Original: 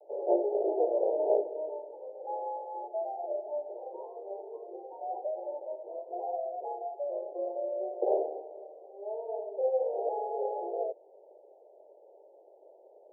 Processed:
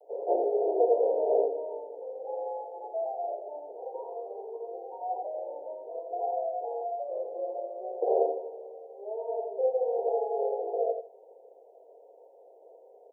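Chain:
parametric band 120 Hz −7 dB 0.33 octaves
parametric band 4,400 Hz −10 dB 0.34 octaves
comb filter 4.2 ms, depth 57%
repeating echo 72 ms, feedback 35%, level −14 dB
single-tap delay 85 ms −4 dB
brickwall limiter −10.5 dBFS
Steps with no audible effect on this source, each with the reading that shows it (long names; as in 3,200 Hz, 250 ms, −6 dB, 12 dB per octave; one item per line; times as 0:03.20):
parametric band 120 Hz: nothing at its input below 300 Hz
parametric band 4,400 Hz: nothing at its input above 960 Hz
brickwall limiter −10.5 dBFS: peak of its input −12.0 dBFS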